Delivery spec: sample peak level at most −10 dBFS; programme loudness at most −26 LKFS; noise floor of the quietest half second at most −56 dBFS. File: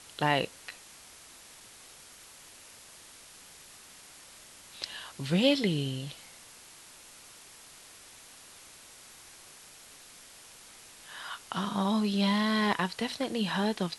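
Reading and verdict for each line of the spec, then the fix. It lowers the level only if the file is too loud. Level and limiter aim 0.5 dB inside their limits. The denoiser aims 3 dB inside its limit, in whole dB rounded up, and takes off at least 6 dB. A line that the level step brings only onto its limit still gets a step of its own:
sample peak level −10.5 dBFS: in spec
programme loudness −30.0 LKFS: in spec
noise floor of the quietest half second −52 dBFS: out of spec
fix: broadband denoise 7 dB, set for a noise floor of −52 dBFS

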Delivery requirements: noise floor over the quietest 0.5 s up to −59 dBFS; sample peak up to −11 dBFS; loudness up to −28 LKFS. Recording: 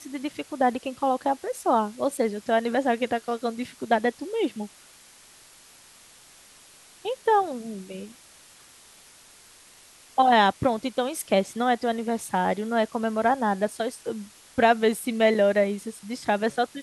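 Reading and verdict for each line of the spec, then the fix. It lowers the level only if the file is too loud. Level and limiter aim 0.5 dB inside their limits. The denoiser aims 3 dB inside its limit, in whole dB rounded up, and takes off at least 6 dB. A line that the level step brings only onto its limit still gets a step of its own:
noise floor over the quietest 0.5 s −52 dBFS: out of spec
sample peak −7.0 dBFS: out of spec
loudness −25.0 LKFS: out of spec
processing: broadband denoise 7 dB, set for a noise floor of −52 dBFS
level −3.5 dB
brickwall limiter −11.5 dBFS

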